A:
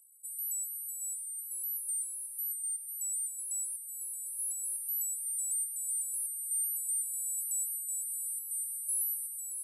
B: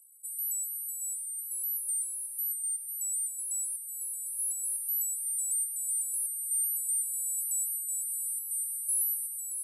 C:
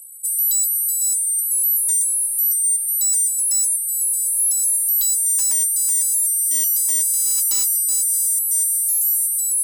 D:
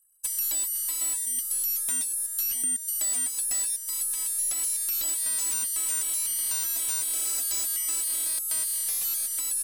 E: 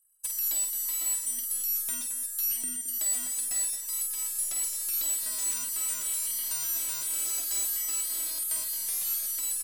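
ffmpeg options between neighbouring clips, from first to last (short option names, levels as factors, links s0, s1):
-af "equalizer=f=11000:w=0.46:g=8,volume=0.596"
-af "aeval=exprs='0.1*sin(PI/2*3.16*val(0)/0.1)':c=same,volume=1.68"
-filter_complex "[0:a]aeval=exprs='0.178*(cos(1*acos(clip(val(0)/0.178,-1,1)))-cos(1*PI/2))+0.00316*(cos(2*acos(clip(val(0)/0.178,-1,1)))-cos(2*PI/2))+0.0631*(cos(3*acos(clip(val(0)/0.178,-1,1)))-cos(3*PI/2))':c=same,acrossover=split=3000|6100[s0][s1][s2];[s0]acompressor=threshold=0.00447:ratio=4[s3];[s1]acompressor=threshold=0.0126:ratio=4[s4];[s2]acompressor=threshold=0.0355:ratio=4[s5];[s3][s4][s5]amix=inputs=3:normalize=0"
-af "aecho=1:1:49|219:0.531|0.316,volume=0.668"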